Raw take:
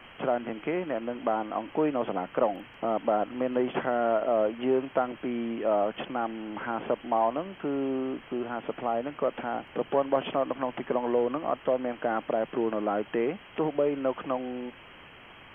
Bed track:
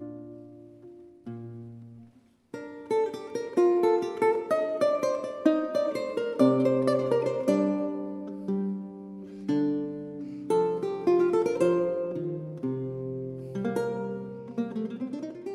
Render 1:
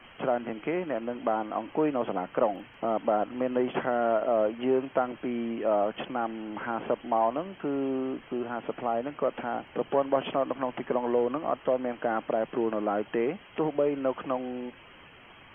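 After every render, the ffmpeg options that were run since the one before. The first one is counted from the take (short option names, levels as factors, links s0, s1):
-af "afftdn=nr=6:nf=-50"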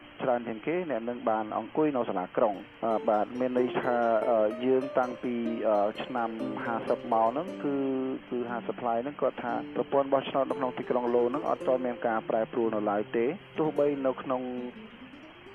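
-filter_complex "[1:a]volume=0.178[s0];[0:a][s0]amix=inputs=2:normalize=0"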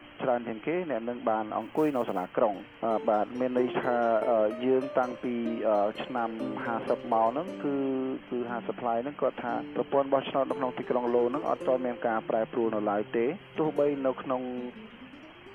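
-filter_complex "[0:a]asplit=3[s0][s1][s2];[s0]afade=t=out:st=1.6:d=0.02[s3];[s1]acrusher=bits=8:mode=log:mix=0:aa=0.000001,afade=t=in:st=1.6:d=0.02,afade=t=out:st=2.32:d=0.02[s4];[s2]afade=t=in:st=2.32:d=0.02[s5];[s3][s4][s5]amix=inputs=3:normalize=0"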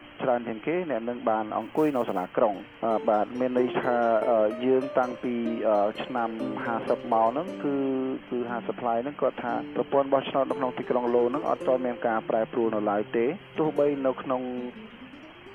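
-af "volume=1.33"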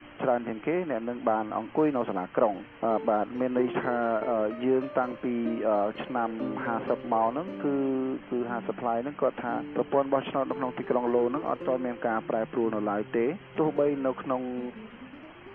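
-af "lowpass=2500,adynamicequalizer=threshold=0.0178:dfrequency=620:dqfactor=1.2:tfrequency=620:tqfactor=1.2:attack=5:release=100:ratio=0.375:range=3:mode=cutabove:tftype=bell"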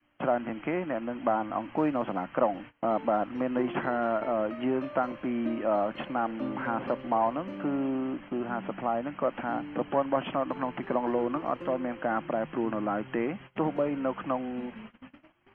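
-af "agate=range=0.0794:threshold=0.00708:ratio=16:detection=peak,equalizer=f=430:t=o:w=0.33:g=-10"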